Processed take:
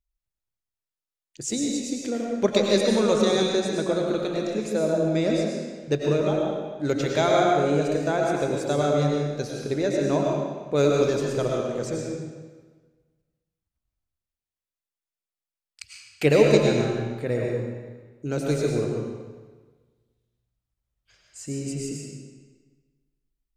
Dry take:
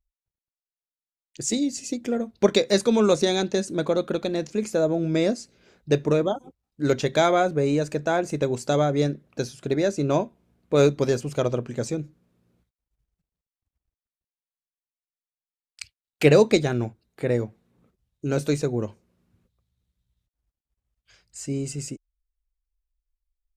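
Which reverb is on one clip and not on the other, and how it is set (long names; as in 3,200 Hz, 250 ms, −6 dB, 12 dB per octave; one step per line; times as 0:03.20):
comb and all-pass reverb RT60 1.4 s, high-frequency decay 0.9×, pre-delay 65 ms, DRR −1 dB
level −3.5 dB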